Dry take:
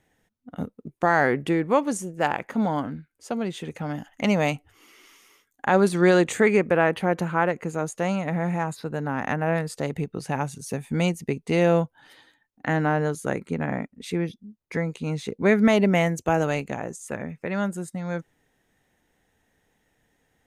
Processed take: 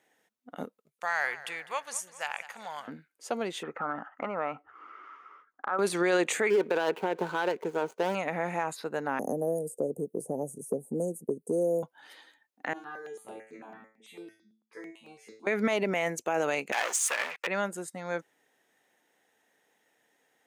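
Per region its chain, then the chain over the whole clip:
0.77–2.88 passive tone stack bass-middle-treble 10-0-10 + warbling echo 0.203 s, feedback 48%, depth 61 cents, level -17 dB
3.63–5.79 synth low-pass 1300 Hz, resonance Q 8 + compressor 5:1, threshold -26 dBFS
6.5–8.15 median filter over 25 samples + small resonant body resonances 410/920/1500 Hz, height 10 dB
9.19–11.83 elliptic band-stop 530–8800 Hz, stop band 50 dB + three-band squash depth 100%
12.73–15.47 resonator 110 Hz, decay 0.39 s, mix 100% + step phaser 9 Hz 510–6300 Hz
16.72–17.47 sample leveller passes 5 + HPF 1100 Hz + high shelf 5200 Hz -5.5 dB
whole clip: HPF 380 Hz 12 dB/oct; dynamic EQ 2400 Hz, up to +4 dB, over -44 dBFS, Q 3.9; limiter -17.5 dBFS

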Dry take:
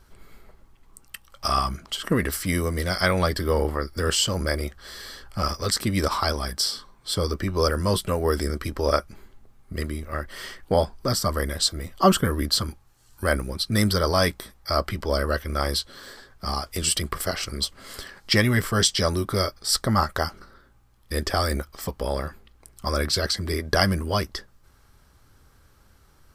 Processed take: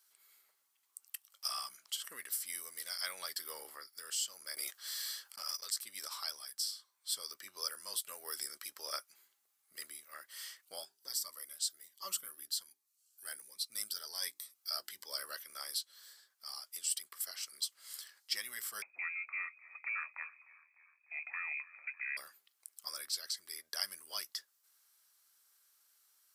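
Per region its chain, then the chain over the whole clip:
4.56–5.7 gate -34 dBFS, range -31 dB + low shelf 170 Hz -7.5 dB + fast leveller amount 100%
10.61–15.13 notches 50/100/150/200/250/300/350/400 Hz + cascading phaser rising 1.3 Hz
18.82–22.17 inverted band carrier 2500 Hz + frequency-shifting echo 0.3 s, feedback 64%, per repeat -34 Hz, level -22 dB
whole clip: HPF 520 Hz 6 dB/oct; differentiator; vocal rider within 4 dB 0.5 s; gain -7.5 dB

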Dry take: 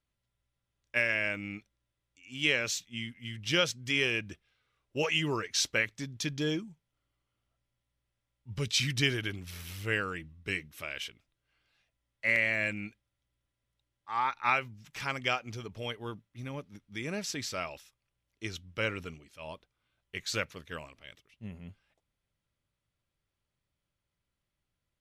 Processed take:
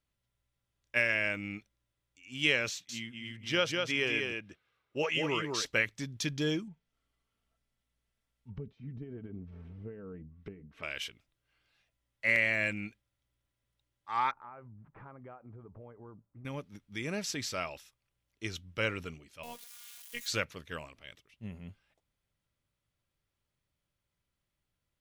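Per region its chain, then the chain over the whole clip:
2.69–5.66 HPF 220 Hz 6 dB/oct + high shelf 3600 Hz -9 dB + echo 0.198 s -4 dB
6.67–10.83 comb 4.5 ms, depth 49% + compressor 8:1, threshold -35 dBFS + treble ducked by the level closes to 460 Hz, closed at -40 dBFS
14.31–16.45 LPF 1200 Hz 24 dB/oct + compressor 4:1, threshold -48 dBFS
19.43–20.28 switching spikes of -37.5 dBFS + robotiser 238 Hz
whole clip: dry

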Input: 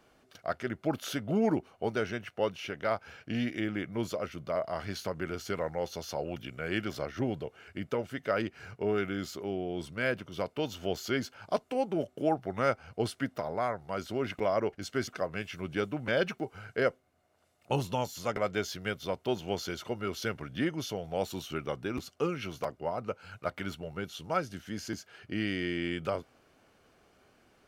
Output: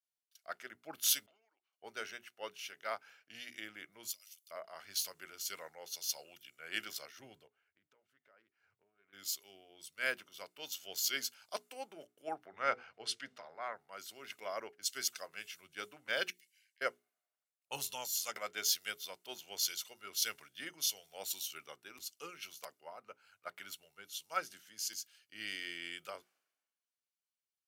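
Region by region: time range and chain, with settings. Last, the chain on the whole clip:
1.26–1.73 BPF 590–2500 Hz + compressor 12:1, threshold -46 dBFS
4.11–4.51 differentiator + three-band squash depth 100%
7.47–9.13 bell 12000 Hz -15 dB 2.4 oct + compressor, threshold -39 dBFS + Doppler distortion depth 0.16 ms
12.46–13.73 LPF 4400 Hz + notches 50/100/150/200/250/300/350/400/450/500 Hz + transient shaper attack 0 dB, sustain +5 dB
16.3–16.81 steep high-pass 1700 Hz 96 dB/oct + compressor, threshold -50 dBFS
whole clip: differentiator; notches 60/120/180/240/300/360/420 Hz; three-band expander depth 100%; gain +5 dB

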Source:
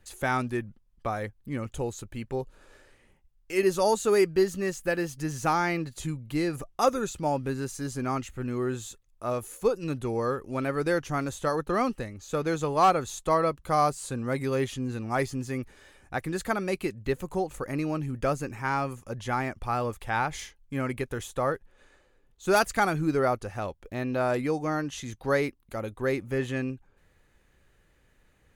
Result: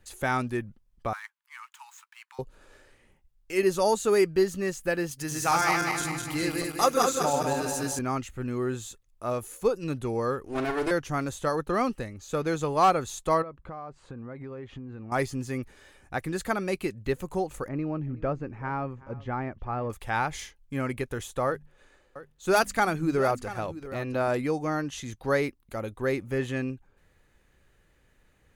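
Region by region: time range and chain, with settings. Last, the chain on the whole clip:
1.13–2.39 median filter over 9 samples + steep high-pass 890 Hz 96 dB/oct
5.11–7.99 regenerating reverse delay 0.101 s, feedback 71%, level -2 dB + tilt +2 dB/oct
10.46–10.91 minimum comb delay 2.8 ms + bell 13000 Hz -6 dB 0.27 oct + doubler 46 ms -9 dB
13.42–15.12 LPF 1800 Hz + compressor 8:1, threshold -36 dBFS
17.68–19.9 tape spacing loss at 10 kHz 40 dB + echo 0.374 s -20 dB
21.47–24.28 notches 50/100/150/200/250 Hz + echo 0.685 s -14.5 dB
whole clip: dry

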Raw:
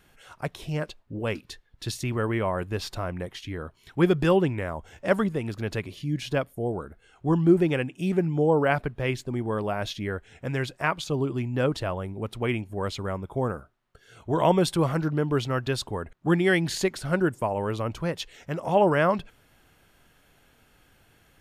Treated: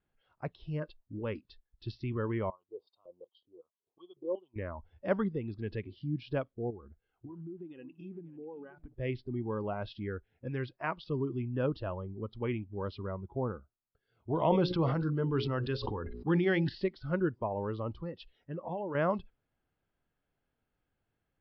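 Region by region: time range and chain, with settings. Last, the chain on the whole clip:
2.5–4.56 low shelf 390 Hz -4.5 dB + LFO band-pass square 2.7 Hz 490–2000 Hz + Chebyshev band-stop 1100–3100 Hz, order 3
6.7–8.94 notch 7000 Hz + compressor 12:1, threshold -33 dBFS + echo 0.541 s -11.5 dB
14.41–16.69 high shelf 4900 Hz +10.5 dB + notches 60/120/180/240/300/360/420/480/540 Hz + sustainer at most 31 dB/s
17.89–18.95 high shelf 5500 Hz -6 dB + compressor 16:1, threshold -25 dBFS
whole clip: steep low-pass 5200 Hz 96 dB/oct; spectral noise reduction 15 dB; high shelf 2000 Hz -11.5 dB; gain -6 dB

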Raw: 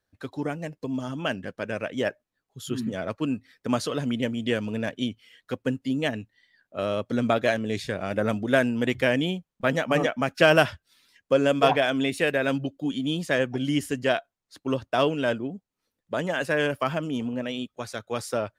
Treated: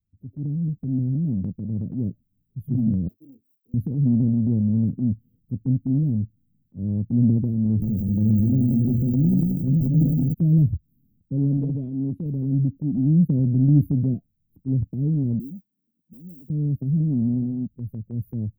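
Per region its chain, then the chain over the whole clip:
3.08–3.74 minimum comb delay 2.8 ms + HPF 1200 Hz + doubler 22 ms -8 dB
7.64–10.34 band shelf 3400 Hz -8.5 dB 1.2 oct + notches 60/120/180/240/300/360/420/480 Hz + lo-fi delay 0.179 s, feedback 55%, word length 7-bit, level -5.5 dB
11.57–12.26 LPF 5500 Hz + low shelf 240 Hz -7 dB
12.97–14.14 HPF 150 Hz 6 dB/oct + low shelf 430 Hz +6.5 dB
15.39–16.5 HPF 210 Hz 24 dB/oct + compressor 2.5:1, threshold -47 dBFS + modulation noise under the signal 19 dB
whole clip: inverse Chebyshev band-stop 830–8600 Hz, stop band 70 dB; transient shaper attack -4 dB, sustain +6 dB; AGC gain up to 7.5 dB; gain +7 dB

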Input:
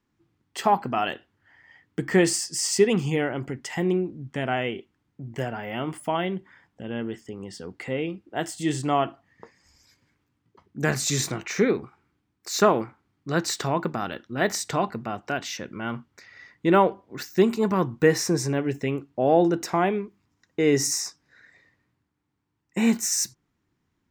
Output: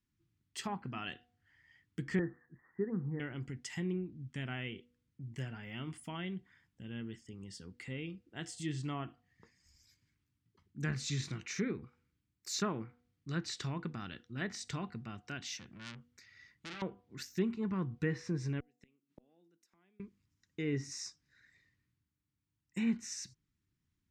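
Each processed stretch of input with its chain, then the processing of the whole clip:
2.19–3.2 steep low-pass 1800 Hz 96 dB/oct + low shelf 150 Hz -5.5 dB
15.45–16.82 HPF 45 Hz 24 dB/oct + compressor 4:1, threshold -21 dBFS + core saturation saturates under 3600 Hz
18.6–20 HPF 190 Hz 24 dB/oct + flipped gate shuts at -22 dBFS, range -33 dB
whole clip: de-hum 242.6 Hz, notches 3; treble ducked by the level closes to 2000 Hz, closed at -18.5 dBFS; passive tone stack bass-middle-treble 6-0-2; gain +7.5 dB

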